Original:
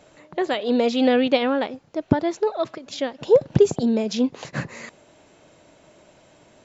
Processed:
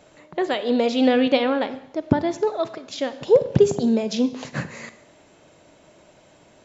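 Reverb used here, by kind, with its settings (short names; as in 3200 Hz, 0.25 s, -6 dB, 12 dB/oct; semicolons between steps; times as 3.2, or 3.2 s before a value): Schroeder reverb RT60 0.81 s, combs from 31 ms, DRR 12.5 dB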